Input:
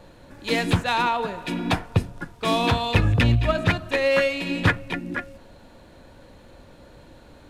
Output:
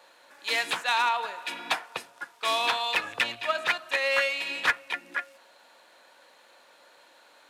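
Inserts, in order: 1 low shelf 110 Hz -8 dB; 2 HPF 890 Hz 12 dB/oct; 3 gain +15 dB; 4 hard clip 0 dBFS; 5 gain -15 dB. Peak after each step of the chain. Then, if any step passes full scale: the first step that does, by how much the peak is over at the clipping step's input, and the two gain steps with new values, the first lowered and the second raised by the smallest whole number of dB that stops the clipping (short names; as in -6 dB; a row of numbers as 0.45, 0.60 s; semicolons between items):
-6.0, -9.0, +6.0, 0.0, -15.0 dBFS; step 3, 6.0 dB; step 3 +9 dB, step 5 -9 dB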